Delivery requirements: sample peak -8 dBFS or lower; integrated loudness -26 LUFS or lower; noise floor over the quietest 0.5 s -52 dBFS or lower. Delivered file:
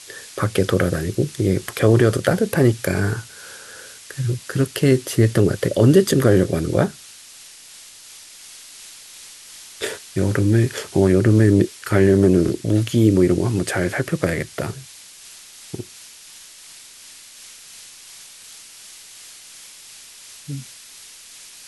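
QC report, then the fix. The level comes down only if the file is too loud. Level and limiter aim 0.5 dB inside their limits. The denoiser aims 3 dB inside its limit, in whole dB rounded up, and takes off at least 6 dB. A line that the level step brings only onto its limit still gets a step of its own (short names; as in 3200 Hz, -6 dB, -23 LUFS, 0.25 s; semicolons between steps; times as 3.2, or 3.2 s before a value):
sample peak -2.5 dBFS: fail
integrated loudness -18.5 LUFS: fail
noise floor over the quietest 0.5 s -43 dBFS: fail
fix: denoiser 6 dB, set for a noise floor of -43 dBFS; gain -8 dB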